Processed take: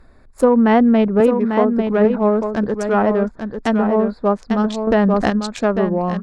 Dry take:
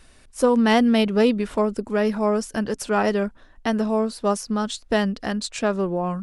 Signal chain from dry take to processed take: local Wiener filter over 15 samples; 1.20–1.76 s: high-pass 210 Hz; low-pass that closes with the level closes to 1.6 kHz, closed at -16.5 dBFS; delay 846 ms -6.5 dB; 4.87–5.30 s: level flattener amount 70%; trim +5 dB

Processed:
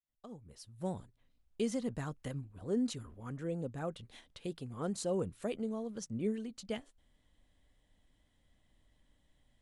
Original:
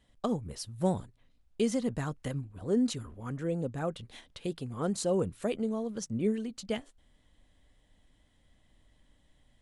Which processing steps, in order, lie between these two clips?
fade-in on the opening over 1.39 s; trim -5.5 dB

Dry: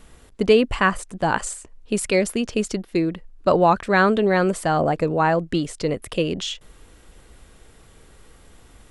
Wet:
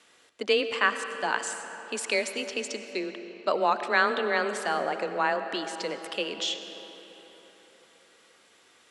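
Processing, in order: band-pass 530–6500 Hz; peaking EQ 750 Hz -7.5 dB 2 oct; on a send at -8.5 dB: reverberation RT60 4.0 s, pre-delay 55 ms; on the sum: frequency shift +20 Hz

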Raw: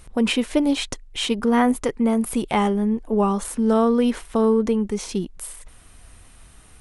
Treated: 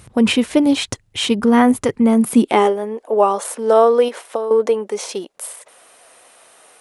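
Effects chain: 4.08–4.51 s: compression 10:1, threshold -24 dBFS, peak gain reduction 11 dB; high-pass sweep 100 Hz -> 550 Hz, 2.09–2.75 s; trim +4.5 dB

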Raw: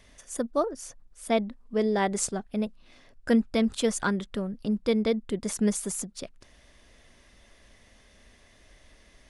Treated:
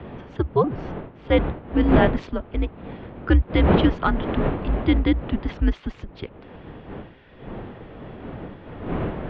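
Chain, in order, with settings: wind noise 480 Hz -33 dBFS; mistuned SSB -160 Hz 190–3500 Hz; trim +6.5 dB

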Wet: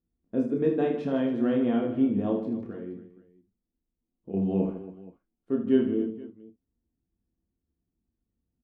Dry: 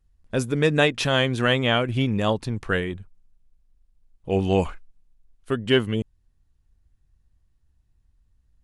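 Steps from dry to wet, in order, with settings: 2.64–4.34 s: compression 4:1, threshold -33 dBFS, peak gain reduction 12.5 dB; band-pass filter 290 Hz, Q 2.3; reverse bouncing-ball echo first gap 30 ms, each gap 1.6×, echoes 5; gated-style reverb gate 90 ms falling, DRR 5 dB

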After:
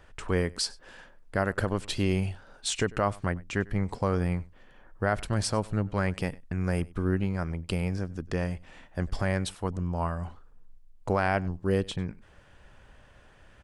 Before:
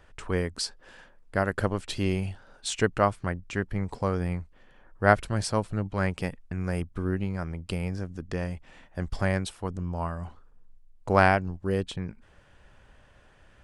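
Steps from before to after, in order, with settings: peak limiter -15.5 dBFS, peak gain reduction 11.5 dB; on a send: delay 97 ms -23 dB; on the sum: trim +1.5 dB

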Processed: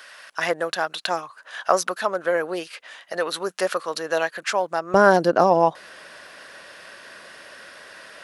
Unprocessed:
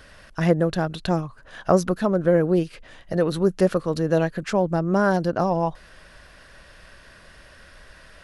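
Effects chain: high-pass 900 Hz 12 dB/octave, from 4.94 s 320 Hz; trim +7 dB

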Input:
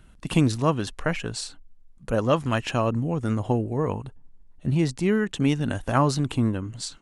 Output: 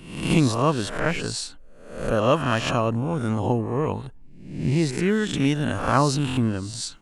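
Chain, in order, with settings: reverse spectral sustain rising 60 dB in 0.69 s; buffer glitch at 6.28 s, samples 1024, times 3

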